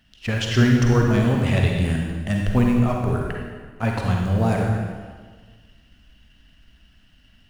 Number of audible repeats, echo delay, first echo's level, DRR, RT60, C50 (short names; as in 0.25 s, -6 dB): none, none, none, 0.0 dB, 1.5 s, 1.0 dB